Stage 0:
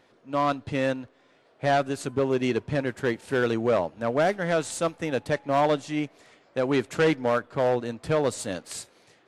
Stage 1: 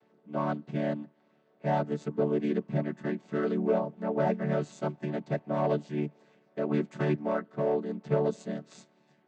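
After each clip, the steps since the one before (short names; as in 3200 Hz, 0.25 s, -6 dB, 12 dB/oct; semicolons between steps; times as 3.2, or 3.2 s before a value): chord vocoder major triad, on D3; gain -3.5 dB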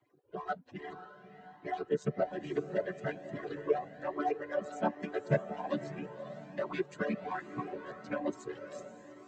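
median-filter separation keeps percussive; diffused feedback echo 0.559 s, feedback 46%, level -10.5 dB; cascading flanger rising 1.2 Hz; gain +7 dB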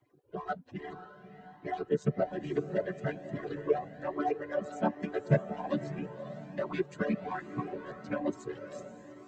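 low shelf 230 Hz +8 dB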